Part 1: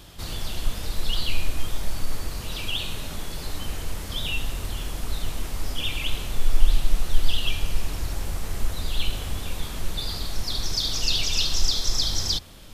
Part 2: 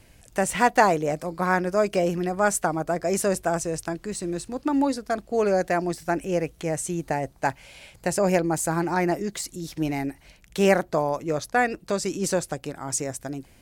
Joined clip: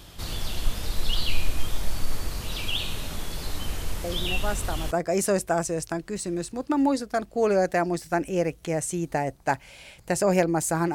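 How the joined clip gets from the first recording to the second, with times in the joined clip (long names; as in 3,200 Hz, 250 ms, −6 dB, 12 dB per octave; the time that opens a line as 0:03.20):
part 1
0:04.04: mix in part 2 from 0:02.00 0.87 s −9 dB
0:04.91: continue with part 2 from 0:02.87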